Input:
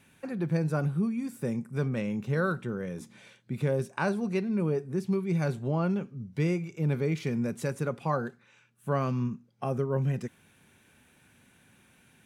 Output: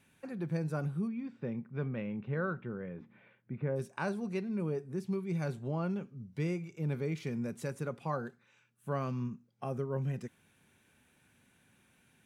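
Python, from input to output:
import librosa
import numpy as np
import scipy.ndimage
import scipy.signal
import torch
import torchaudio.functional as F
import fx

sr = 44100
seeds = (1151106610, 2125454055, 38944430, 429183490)

y = fx.lowpass(x, sr, hz=fx.line((1.07, 3900.0), (3.75, 2100.0)), slope=24, at=(1.07, 3.75), fade=0.02)
y = y * librosa.db_to_amplitude(-6.5)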